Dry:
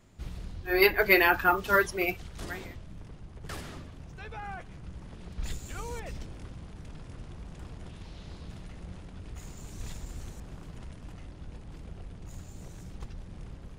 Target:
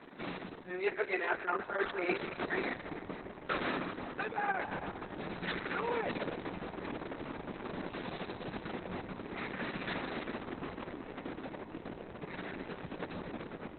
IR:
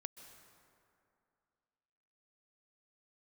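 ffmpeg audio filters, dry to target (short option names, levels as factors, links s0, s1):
-filter_complex "[0:a]highpass=f=230:w=0.5412,highpass=f=230:w=1.3066,areverse,acompressor=threshold=0.00794:ratio=16,areverse[s0];[1:a]atrim=start_sample=2205[s1];[s0][s1]afir=irnorm=-1:irlink=0,acrusher=samples=5:mix=1:aa=0.000001,equalizer=f=3200:w=2.8:g=-7.5,volume=7.5" -ar 48000 -c:a libopus -b:a 6k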